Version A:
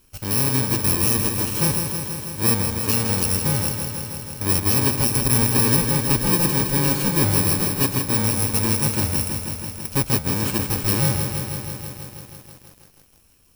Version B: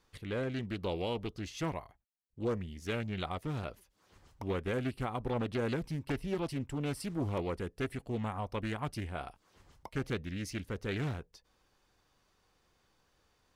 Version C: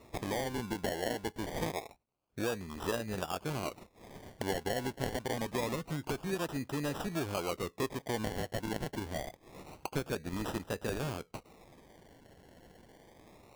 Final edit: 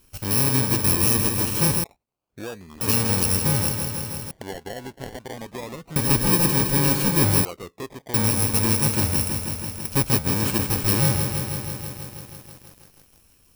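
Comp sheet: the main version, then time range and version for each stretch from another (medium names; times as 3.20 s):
A
1.84–2.81 s: from C
4.31–5.96 s: from C
7.45–8.14 s: from C
not used: B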